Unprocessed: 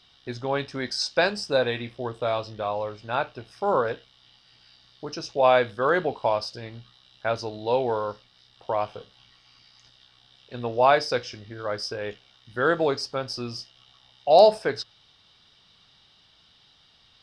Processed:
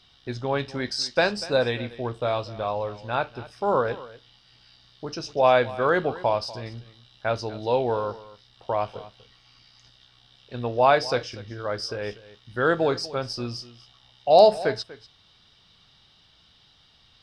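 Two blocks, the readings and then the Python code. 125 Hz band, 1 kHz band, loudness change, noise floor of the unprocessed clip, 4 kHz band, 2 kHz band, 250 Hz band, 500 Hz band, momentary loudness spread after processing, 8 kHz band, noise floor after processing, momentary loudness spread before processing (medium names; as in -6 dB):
+3.5 dB, +0.5 dB, +0.5 dB, -60 dBFS, 0.0 dB, 0.0 dB, +1.5 dB, +0.5 dB, 17 LU, no reading, -59 dBFS, 17 LU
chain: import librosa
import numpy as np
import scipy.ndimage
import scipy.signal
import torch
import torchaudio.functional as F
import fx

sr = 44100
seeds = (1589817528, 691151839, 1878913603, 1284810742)

p1 = fx.low_shelf(x, sr, hz=150.0, db=6.0)
y = p1 + fx.echo_single(p1, sr, ms=242, db=-18.0, dry=0)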